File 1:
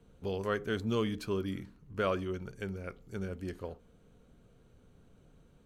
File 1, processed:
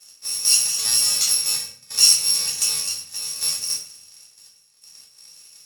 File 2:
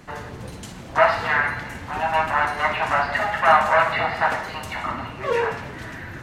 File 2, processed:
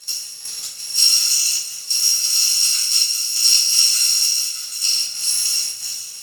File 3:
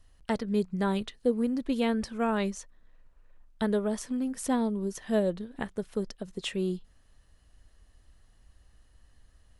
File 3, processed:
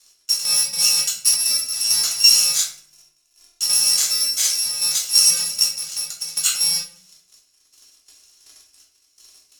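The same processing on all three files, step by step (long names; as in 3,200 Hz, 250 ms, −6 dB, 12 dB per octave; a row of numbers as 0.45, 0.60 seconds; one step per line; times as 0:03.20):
samples in bit-reversed order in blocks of 128 samples
leveller curve on the samples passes 2
gate pattern "x...xx.xxxxx." 134 BPM −12 dB
transient designer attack +2 dB, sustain +7 dB
in parallel at −5 dB: wave folding −15 dBFS
on the sum: downward compressor 2 to 1, threshold −29 dBFS
resonant band-pass 6,300 Hz, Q 2.3
rectangular room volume 59 cubic metres, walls mixed, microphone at 1 metre
normalise the peak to −1.5 dBFS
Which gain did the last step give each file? +18.0, +9.5, +16.5 decibels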